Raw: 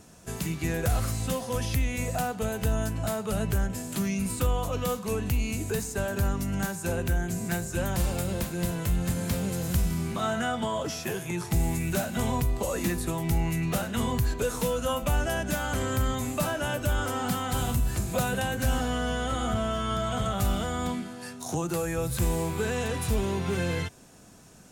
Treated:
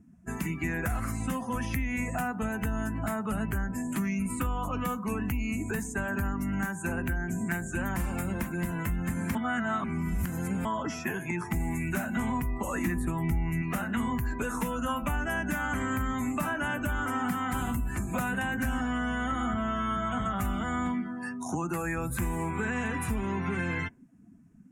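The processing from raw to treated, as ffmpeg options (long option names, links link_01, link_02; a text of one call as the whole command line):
ffmpeg -i in.wav -filter_complex "[0:a]asettb=1/sr,asplit=3[link_01][link_02][link_03];[link_01]atrim=end=12.874[link_04];[link_02]atrim=start=12.87:end=13.62,asetpts=PTS-STARTPTS,afade=type=in:duration=0.004:curve=qsin,afade=type=out:start_time=0.746:duration=0.004:curve=qsin,lowshelf=frequency=210:gain=9[link_05];[link_03]atrim=start=13.616[link_06];[link_04][link_05]acrossfade=duration=0.004:curve1=hsin:curve2=qsin[link_07];[link_07][link_06]acrossfade=duration=0.004:curve1=qsin:curve2=hsin,asplit=3[link_08][link_09][link_10];[link_08]atrim=end=9.352[link_11];[link_09]atrim=start=9.348:end=10.652,asetpts=PTS-STARTPTS,areverse[link_12];[link_10]atrim=start=10.648[link_13];[link_11][link_12]acrossfade=duration=0.004:curve1=hsin:curve2=hsin[link_14];[link_14][link_13]acrossfade=duration=0.004:curve1=hsin:curve2=hsin,afftdn=noise_reduction=25:noise_floor=-44,equalizer=frequency=125:width_type=o:width=1:gain=-5,equalizer=frequency=250:width_type=o:width=1:gain=9,equalizer=frequency=500:width_type=o:width=1:gain=-9,equalizer=frequency=1000:width_type=o:width=1:gain=5,equalizer=frequency=2000:width_type=o:width=1:gain=10,equalizer=frequency=4000:width_type=o:width=1:gain=-12,acompressor=threshold=-28dB:ratio=3" out.wav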